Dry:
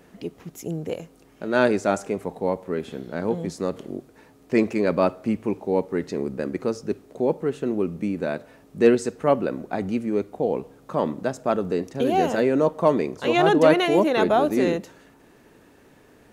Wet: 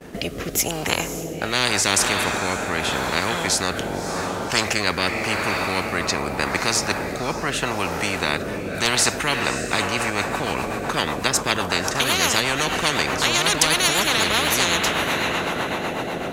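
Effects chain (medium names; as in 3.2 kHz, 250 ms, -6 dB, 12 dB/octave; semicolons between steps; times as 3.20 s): expander -46 dBFS; echo that smears into a reverb 572 ms, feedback 45%, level -13 dB; rotary cabinet horn 0.85 Hz, later 8 Hz, at 9.46 s; spectrum-flattening compressor 10:1; trim +4 dB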